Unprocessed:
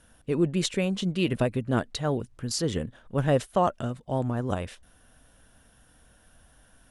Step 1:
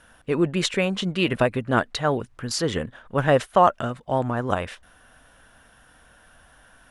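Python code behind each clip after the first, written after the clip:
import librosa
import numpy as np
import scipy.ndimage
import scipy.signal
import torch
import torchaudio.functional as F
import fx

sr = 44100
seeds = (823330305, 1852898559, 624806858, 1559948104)

y = fx.peak_eq(x, sr, hz=1400.0, db=10.5, octaves=2.8)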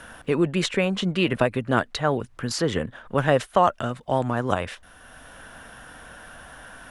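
y = fx.band_squash(x, sr, depth_pct=40)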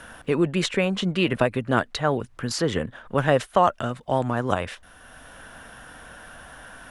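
y = x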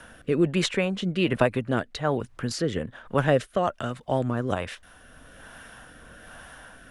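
y = fx.rotary(x, sr, hz=1.2)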